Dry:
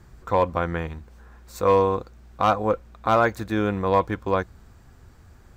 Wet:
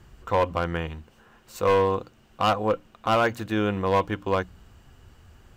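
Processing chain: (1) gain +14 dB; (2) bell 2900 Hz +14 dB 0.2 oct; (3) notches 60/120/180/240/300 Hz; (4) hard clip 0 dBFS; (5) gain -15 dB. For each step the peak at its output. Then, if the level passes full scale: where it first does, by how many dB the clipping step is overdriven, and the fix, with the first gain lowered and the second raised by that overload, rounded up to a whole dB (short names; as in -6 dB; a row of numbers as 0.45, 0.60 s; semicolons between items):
+5.0, +6.0, +6.5, 0.0, -15.0 dBFS; step 1, 6.5 dB; step 1 +7 dB, step 5 -8 dB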